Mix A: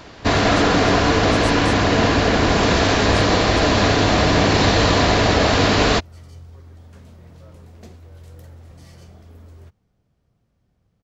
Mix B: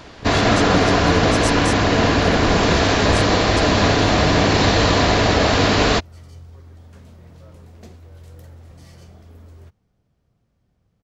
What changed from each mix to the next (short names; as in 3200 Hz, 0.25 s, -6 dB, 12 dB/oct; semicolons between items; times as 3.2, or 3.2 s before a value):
speech +9.0 dB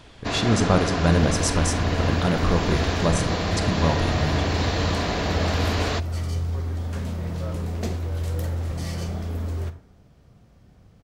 first sound -10.0 dB; second sound +11.5 dB; reverb: on, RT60 0.60 s